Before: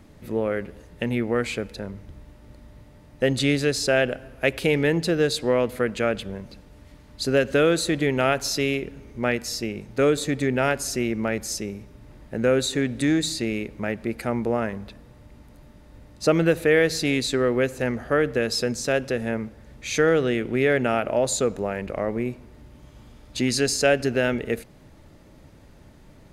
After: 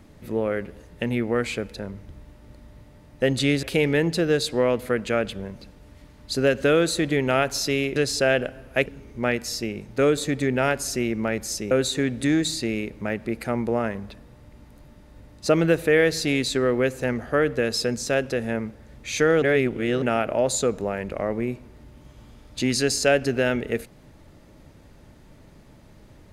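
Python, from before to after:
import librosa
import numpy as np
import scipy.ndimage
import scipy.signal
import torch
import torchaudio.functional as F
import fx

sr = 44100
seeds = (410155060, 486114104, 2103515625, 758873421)

y = fx.edit(x, sr, fx.move(start_s=3.63, length_s=0.9, to_s=8.86),
    fx.cut(start_s=11.71, length_s=0.78),
    fx.reverse_span(start_s=20.2, length_s=0.6), tone=tone)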